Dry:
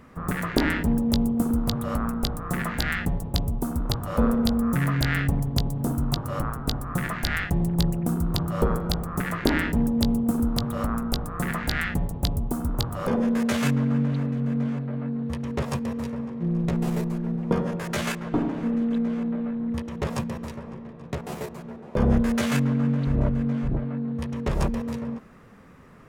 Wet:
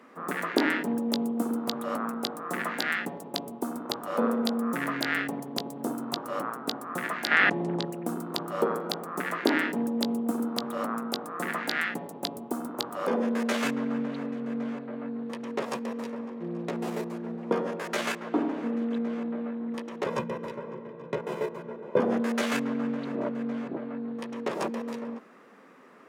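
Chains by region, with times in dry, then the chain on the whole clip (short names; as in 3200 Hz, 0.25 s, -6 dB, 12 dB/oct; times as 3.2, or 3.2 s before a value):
7.31–7.85 air absorption 120 m + fast leveller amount 100%
20.06–22 tone controls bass +14 dB, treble -9 dB + notch 4400 Hz, Q 17 + comb 2 ms, depth 67%
whole clip: HPF 260 Hz 24 dB/oct; high shelf 6500 Hz -6.5 dB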